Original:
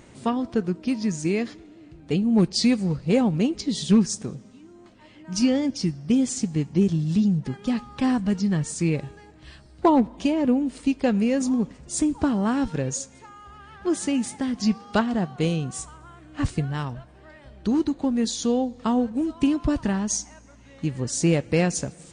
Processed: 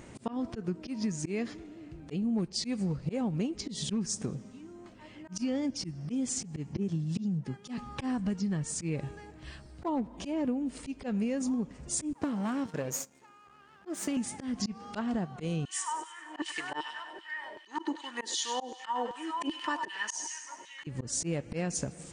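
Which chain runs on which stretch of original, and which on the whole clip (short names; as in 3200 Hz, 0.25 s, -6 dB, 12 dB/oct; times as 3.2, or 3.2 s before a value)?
6.76–7.78 HPF 97 Hz + three-band expander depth 100%
12.13–14.17 half-wave gain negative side -12 dB + HPF 160 Hz + gate -42 dBFS, range -8 dB
15.65–20.87 LFO high-pass saw down 2.6 Hz 450–3900 Hz + small resonant body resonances 330/930/1800/3000 Hz, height 17 dB, ringing for 50 ms + thin delay 99 ms, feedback 51%, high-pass 1400 Hz, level -10.5 dB
whole clip: bell 3900 Hz -3.5 dB 0.65 oct; auto swell 0.197 s; compressor 5:1, threshold -29 dBFS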